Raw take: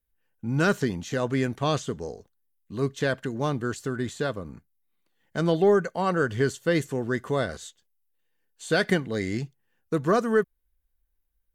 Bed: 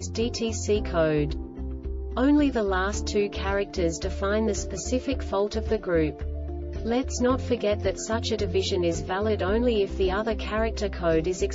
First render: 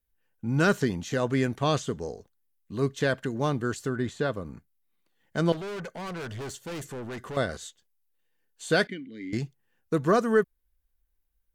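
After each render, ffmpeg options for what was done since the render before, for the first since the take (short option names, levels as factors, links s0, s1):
-filter_complex "[0:a]asettb=1/sr,asplit=3[s0][s1][s2];[s0]atrim=end=3.894[s3];[s1]atrim=start=3.89:end=4.33,asetpts=PTS-STARTPTS,afade=t=in:d=0.004:c=qsin,afade=t=out:st=0.436:d=0.004:c=qsin,aemphasis=mode=reproduction:type=cd[s4];[s2]atrim=start=4.326[s5];[s3][s4]acrossfade=d=0.004:c1=hsin:c2=qsin[s6];[s6][s5]acrossfade=d=0.004:c1=qsin:c2=hsin,asettb=1/sr,asplit=3[s7][s8][s9];[s7]atrim=end=5.524[s10];[s8]atrim=start=5.52:end=7.37,asetpts=PTS-STARTPTS,afade=t=in:d=0.004:c=qsin,afade=t=out:st=1.846:d=0.004:c=qsin,aeval=exprs='(tanh(50.1*val(0)+0.05)-tanh(0.05))/50.1':c=same[s11];[s9]atrim=start=7.366[s12];[s10][s11]acrossfade=d=0.004:c1=hsin:c2=qsin[s13];[s13][s12]acrossfade=d=0.004:c1=qsin:c2=hsin,asettb=1/sr,asplit=3[s14][s15][s16];[s14]atrim=end=8.874[s17];[s15]atrim=start=8.87:end=9.33,asetpts=PTS-STARTPTS,afade=t=in:d=0.004:c=qsin,afade=t=out:st=0.456:d=0.004:c=qsin,asplit=3[s18][s19][s20];[s18]bandpass=f=270:t=q:w=8,volume=1[s21];[s19]bandpass=f=2290:t=q:w=8,volume=0.501[s22];[s20]bandpass=f=3010:t=q:w=8,volume=0.355[s23];[s21][s22][s23]amix=inputs=3:normalize=0[s24];[s16]atrim=start=9.326[s25];[s17][s24]acrossfade=d=0.004:c1=hsin:c2=qsin[s26];[s26][s25]acrossfade=d=0.004:c1=qsin:c2=hsin"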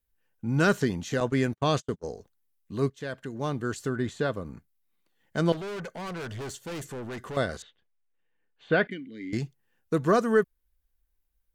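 -filter_complex "[0:a]asettb=1/sr,asplit=3[s0][s1][s2];[s0]atrim=end=1.204[s3];[s1]atrim=start=1.2:end=2.04,asetpts=PTS-STARTPTS,afade=t=in:d=0.004:c=qsin,afade=t=out:st=0.836:d=0.004:c=qsin,agate=range=0.01:threshold=0.0224:ratio=16:release=100:detection=peak[s4];[s2]atrim=start=2.036[s5];[s3][s4]acrossfade=d=0.004:c1=hsin:c2=qsin[s6];[s6][s5]acrossfade=d=0.004:c1=qsin:c2=hsin,asettb=1/sr,asplit=3[s7][s8][s9];[s7]atrim=end=7.624[s10];[s8]atrim=start=7.62:end=8.91,asetpts=PTS-STARTPTS,afade=t=in:d=0.004:c=qsin,afade=t=out:st=1.286:d=0.004:c=qsin,lowpass=f=2900:w=0.5412,lowpass=f=2900:w=1.3066[s11];[s9]atrim=start=8.906[s12];[s10][s11]acrossfade=d=0.004:c1=hsin:c2=qsin[s13];[s13][s12]acrossfade=d=0.004:c1=qsin:c2=hsin,asplit=2[s14][s15];[s14]atrim=end=2.9,asetpts=PTS-STARTPTS,afade=t=out:st=2.896:d=0.004:c=hsin:silence=0.177828[s16];[s15]atrim=start=2.9,asetpts=PTS-STARTPTS,afade=t=in:d=0.97:silence=0.177828[s17];[s16][s17]concat=n=2:v=0:a=1"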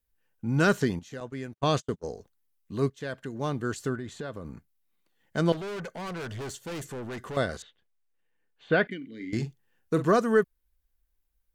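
-filter_complex "[0:a]asettb=1/sr,asplit=3[s0][s1][s2];[s0]atrim=end=3.954[s3];[s1]atrim=start=3.95:end=4.44,asetpts=PTS-STARTPTS,afade=t=in:d=0.004:c=qsin,afade=t=out:st=0.486:d=0.004:c=qsin,acompressor=threshold=0.0178:ratio=3:attack=3.2:release=140:knee=1:detection=peak[s4];[s2]atrim=start=4.436[s5];[s3][s4]acrossfade=d=0.004:c1=hsin:c2=qsin[s6];[s6][s5]acrossfade=d=0.004:c1=qsin:c2=hsin,asettb=1/sr,asplit=3[s7][s8][s9];[s7]atrim=end=8.974[s10];[s8]atrim=start=8.97:end=10.05,asetpts=PTS-STARTPTS,afade=t=in:d=0.004:c=qsin,afade=t=out:st=1.076:d=0.004:c=qsin,asplit=2[s11][s12];[s12]adelay=44,volume=0.316[s13];[s11][s13]amix=inputs=2:normalize=0,atrim=end_sample=47628[s14];[s9]atrim=start=10.046[s15];[s10][s14]acrossfade=d=0.004:c1=hsin:c2=qsin[s16];[s16][s15]acrossfade=d=0.004:c1=qsin:c2=hsin,asplit=3[s17][s18][s19];[s17]atrim=end=0.992[s20];[s18]atrim=start=0.988:end=1.632,asetpts=PTS-STARTPTS,volume=0.266[s21];[s19]atrim=start=1.628[s22];[s20][s21]acrossfade=d=0.004:c1=hsin:c2=hsin[s23];[s23][s22]acrossfade=d=0.004:c1=hsin:c2=hsin"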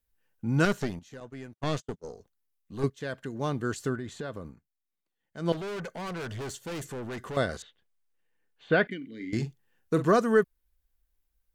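-filter_complex "[0:a]asettb=1/sr,asplit=3[s0][s1][s2];[s0]atrim=end=0.654[s3];[s1]atrim=start=0.65:end=2.84,asetpts=PTS-STARTPTS,afade=t=in:d=0.004:c=qsin,afade=t=out:st=2.186:d=0.004:c=qsin,aeval=exprs='(tanh(10*val(0)+0.8)-tanh(0.8))/10':c=same[s4];[s2]atrim=start=2.836[s5];[s3][s4]acrossfade=d=0.004:c1=hsin:c2=qsin[s6];[s6][s5]acrossfade=d=0.004:c1=qsin:c2=hsin,asplit=3[s7][s8][s9];[s7]atrim=end=4.56,asetpts=PTS-STARTPTS,afade=t=out:st=4.41:d=0.15:silence=0.223872[s10];[s8]atrim=start=4.56:end=5.4,asetpts=PTS-STARTPTS,volume=0.224[s11];[s9]atrim=start=5.4,asetpts=PTS-STARTPTS,afade=t=in:d=0.15:silence=0.223872[s12];[s10][s11][s12]concat=n=3:v=0:a=1"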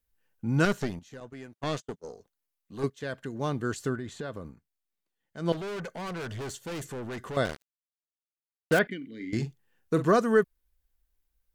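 -filter_complex "[0:a]asettb=1/sr,asplit=3[s0][s1][s2];[s0]atrim=end=1.334[s3];[s1]atrim=start=1.33:end=3.03,asetpts=PTS-STARTPTS,afade=t=in:d=0.004:c=qsin,afade=t=out:st=1.696:d=0.004:c=qsin,lowshelf=f=120:g=-9[s4];[s2]atrim=start=3.026[s5];[s3][s4]acrossfade=d=0.004:c1=hsin:c2=qsin[s6];[s6][s5]acrossfade=d=0.004:c1=qsin:c2=hsin,asettb=1/sr,asplit=3[s7][s8][s9];[s7]atrim=end=7.454[s10];[s8]atrim=start=7.45:end=8.79,asetpts=PTS-STARTPTS,afade=t=in:d=0.004:c=qsin,afade=t=out:st=1.336:d=0.004:c=qsin,acrusher=bits=4:mix=0:aa=0.5[s11];[s9]atrim=start=8.786[s12];[s10][s11]acrossfade=d=0.004:c1=hsin:c2=qsin[s13];[s13][s12]acrossfade=d=0.004:c1=qsin:c2=hsin"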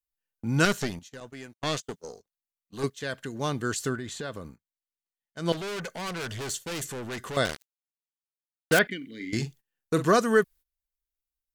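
-af "agate=range=0.112:threshold=0.00447:ratio=16:detection=peak,highshelf=f=2000:g=10"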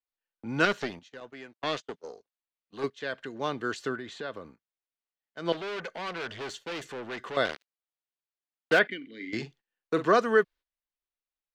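-filter_complex "[0:a]acrossover=split=260 4500:gain=0.224 1 0.0708[s0][s1][s2];[s0][s1][s2]amix=inputs=3:normalize=0"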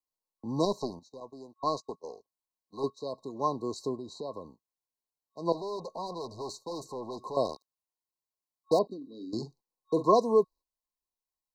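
-af "afftfilt=real='re*(1-between(b*sr/4096,1100,3800))':imag='im*(1-between(b*sr/4096,1100,3800))':win_size=4096:overlap=0.75,equalizer=f=1100:w=5.9:g=9"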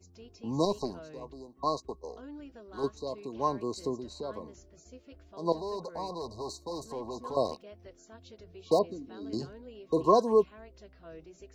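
-filter_complex "[1:a]volume=0.0562[s0];[0:a][s0]amix=inputs=2:normalize=0"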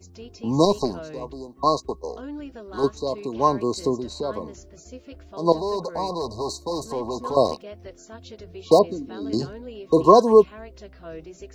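-af "volume=3.16,alimiter=limit=0.794:level=0:latency=1"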